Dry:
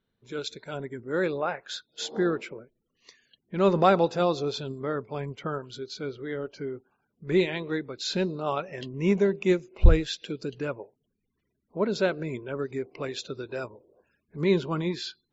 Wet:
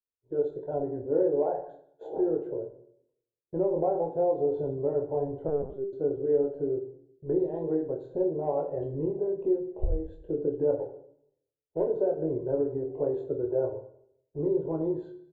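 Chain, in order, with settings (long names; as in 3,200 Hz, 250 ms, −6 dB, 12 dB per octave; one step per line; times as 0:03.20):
0:10.71–0:11.87: gap after every zero crossing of 0.28 ms
inverse Chebyshev low-pass filter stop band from 2,100 Hz, stop band 40 dB
downward expander −45 dBFS
downward compressor 12 to 1, threshold −30 dBFS, peak gain reduction 21.5 dB
phaser with its sweep stopped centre 500 Hz, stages 4
ambience of single reflections 14 ms −8.5 dB, 25 ms −4.5 dB
convolution reverb RT60 0.70 s, pre-delay 14 ms, DRR 5.5 dB
0:05.48–0:05.93: linear-prediction vocoder at 8 kHz pitch kept
level +6.5 dB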